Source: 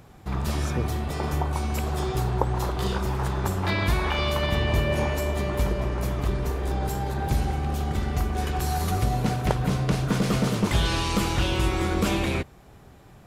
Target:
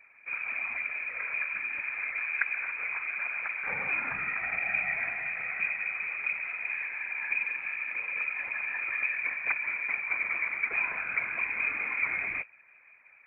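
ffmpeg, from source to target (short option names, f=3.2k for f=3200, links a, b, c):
-af "aeval=exprs='0.596*(cos(1*acos(clip(val(0)/0.596,-1,1)))-cos(1*PI/2))+0.0841*(cos(3*acos(clip(val(0)/0.596,-1,1)))-cos(3*PI/2))':c=same,lowpass=f=2.1k:t=q:w=0.5098,lowpass=f=2.1k:t=q:w=0.6013,lowpass=f=2.1k:t=q:w=0.9,lowpass=f=2.1k:t=q:w=2.563,afreqshift=-2500,afftfilt=real='hypot(re,im)*cos(2*PI*random(0))':imag='hypot(re,im)*sin(2*PI*random(1))':win_size=512:overlap=0.75,volume=2.5dB"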